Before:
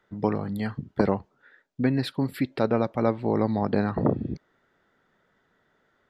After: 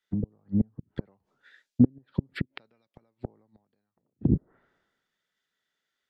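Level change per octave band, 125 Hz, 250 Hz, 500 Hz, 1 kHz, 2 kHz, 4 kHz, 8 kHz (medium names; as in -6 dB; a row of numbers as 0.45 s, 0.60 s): -2.0 dB, -2.5 dB, -16.0 dB, -24.0 dB, -9.5 dB, -11.0 dB, no reading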